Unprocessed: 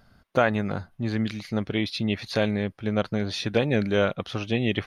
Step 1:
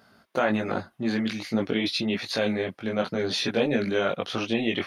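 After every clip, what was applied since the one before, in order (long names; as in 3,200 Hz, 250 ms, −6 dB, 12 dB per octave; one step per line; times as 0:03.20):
high-pass filter 200 Hz 12 dB per octave
in parallel at −1 dB: compressor whose output falls as the input rises −30 dBFS, ratio −1
on the sum: multi-voice chorus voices 6, 1.2 Hz, delay 20 ms, depth 3 ms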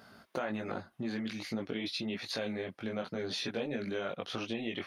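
downward compressor 2.5 to 1, threshold −41 dBFS, peak gain reduction 14.5 dB
level +1.5 dB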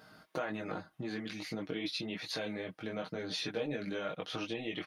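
comb filter 6.4 ms, depth 56%
level −2 dB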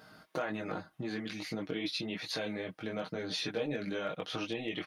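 gain into a clipping stage and back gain 25 dB
level +1.5 dB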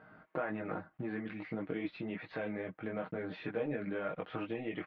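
one scale factor per block 5 bits
low-pass filter 2,200 Hz 24 dB per octave
level −1 dB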